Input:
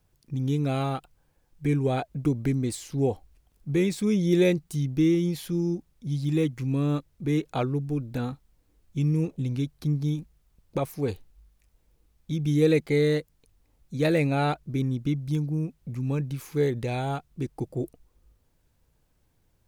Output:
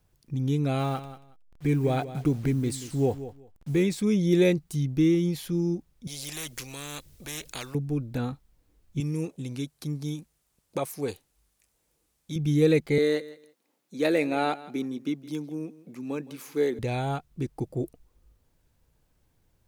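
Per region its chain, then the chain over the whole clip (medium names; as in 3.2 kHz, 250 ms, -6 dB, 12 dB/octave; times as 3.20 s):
0.79–3.83 s: send-on-delta sampling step -48 dBFS + feedback delay 184 ms, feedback 18%, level -13.5 dB
6.07–7.75 s: peaking EQ 1 kHz -12.5 dB 2.8 oct + spectrum-flattening compressor 4:1
9.00–12.36 s: high-pass 300 Hz 6 dB/octave + peaking EQ 9 kHz +7.5 dB 1.3 oct
12.98–16.79 s: high-pass 230 Hz 24 dB/octave + feedback delay 165 ms, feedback 19%, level -18 dB
whole clip: none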